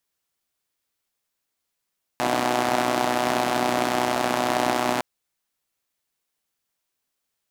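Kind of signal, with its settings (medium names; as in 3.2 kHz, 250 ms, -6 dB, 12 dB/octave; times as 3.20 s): four-cylinder engine model, steady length 2.81 s, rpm 3700, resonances 310/670 Hz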